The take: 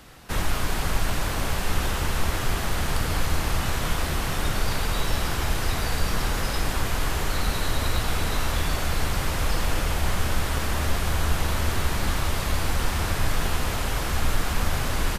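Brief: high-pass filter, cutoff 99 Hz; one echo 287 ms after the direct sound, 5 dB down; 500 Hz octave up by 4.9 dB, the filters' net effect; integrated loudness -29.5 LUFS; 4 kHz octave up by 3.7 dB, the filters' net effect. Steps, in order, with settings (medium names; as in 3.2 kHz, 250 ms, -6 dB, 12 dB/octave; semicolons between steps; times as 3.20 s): high-pass 99 Hz; peaking EQ 500 Hz +6 dB; peaking EQ 4 kHz +4.5 dB; delay 287 ms -5 dB; trim -4.5 dB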